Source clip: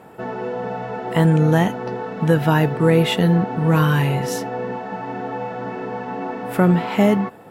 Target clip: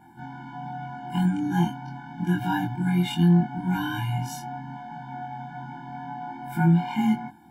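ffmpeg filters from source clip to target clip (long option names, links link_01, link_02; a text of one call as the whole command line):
ffmpeg -i in.wav -af "afftfilt=real='re':imag='-im':win_size=2048:overlap=0.75,afftfilt=real='re*eq(mod(floor(b*sr/1024/350),2),0)':imag='im*eq(mod(floor(b*sr/1024/350),2),0)':win_size=1024:overlap=0.75,volume=-1dB" out.wav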